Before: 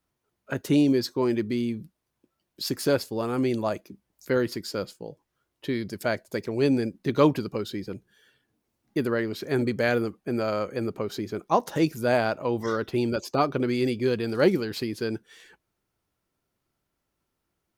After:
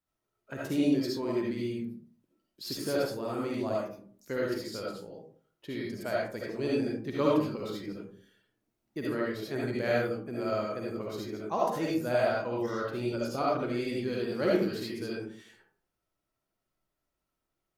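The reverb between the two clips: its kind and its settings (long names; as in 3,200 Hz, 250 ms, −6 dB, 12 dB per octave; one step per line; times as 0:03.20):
comb and all-pass reverb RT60 0.51 s, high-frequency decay 0.45×, pre-delay 30 ms, DRR −5 dB
level −11 dB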